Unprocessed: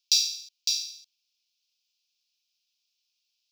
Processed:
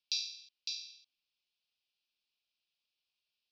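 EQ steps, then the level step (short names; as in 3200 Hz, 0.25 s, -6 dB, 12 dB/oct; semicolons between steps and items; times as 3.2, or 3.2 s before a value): high shelf 5900 Hz -6 dB; dynamic EQ 3000 Hz, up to -6 dB, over -43 dBFS, Q 2.7; air absorption 260 m; +1.0 dB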